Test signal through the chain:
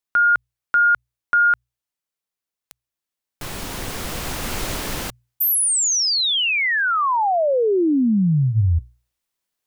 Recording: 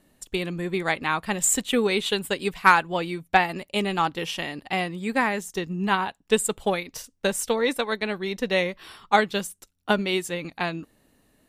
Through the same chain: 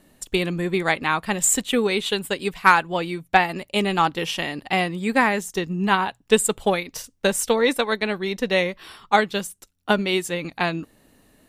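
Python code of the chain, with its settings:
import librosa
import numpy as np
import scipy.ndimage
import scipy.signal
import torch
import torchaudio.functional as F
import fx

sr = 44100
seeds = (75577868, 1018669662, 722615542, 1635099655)

y = fx.hum_notches(x, sr, base_hz=60, count=2)
y = fx.rider(y, sr, range_db=4, speed_s=2.0)
y = F.gain(torch.from_numpy(y), 2.5).numpy()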